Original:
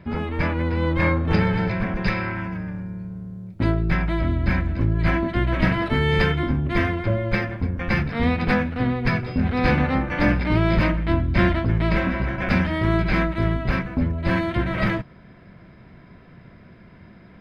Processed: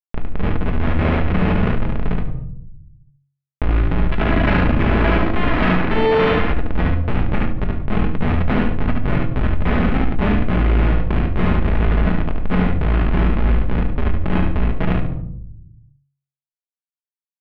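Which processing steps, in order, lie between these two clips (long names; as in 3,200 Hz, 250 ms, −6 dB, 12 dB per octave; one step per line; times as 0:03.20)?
0:04.10–0:06.45: spectral envelope flattened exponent 0.3
comparator with hysteresis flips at −16 dBFS
repeating echo 72 ms, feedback 23%, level −3 dB
convolution reverb RT60 0.45 s, pre-delay 5 ms, DRR 3.5 dB
dynamic equaliser 2,100 Hz, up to +3 dB, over −34 dBFS, Q 0.82
low-pass filter 2,800 Hz 24 dB per octave
hum removal 46.55 Hz, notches 3
envelope flattener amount 50%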